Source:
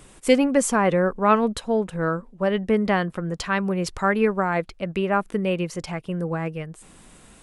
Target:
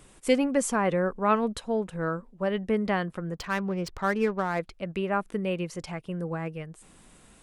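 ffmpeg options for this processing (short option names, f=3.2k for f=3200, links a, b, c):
-filter_complex "[0:a]asettb=1/sr,asplit=3[a][b][c];[a]atrim=end=3.344[d];[b]atrim=start=3.34:end=4.59,asetpts=PTS-STARTPTS,afade=t=in:d=0.004:c=qsin,afade=t=out:st=1.246:d=0.004:c=qsin,adynamicsmooth=sensitivity=5:basefreq=1.9k[e];[c]atrim=start=4.586[f];[d][e]acrossfade=d=0.004:c1=hsin:c2=qsin[g];[g][f]acrossfade=d=0.004:c1=qsin:c2=hsin,volume=-5.5dB"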